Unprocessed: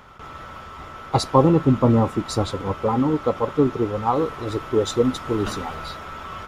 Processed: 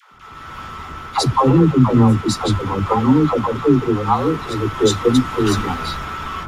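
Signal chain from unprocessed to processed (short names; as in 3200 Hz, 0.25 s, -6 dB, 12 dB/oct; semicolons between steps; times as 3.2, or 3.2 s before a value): bell 580 Hz -10 dB 0.63 oct; AGC gain up to 9 dB; dispersion lows, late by 0.131 s, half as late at 480 Hz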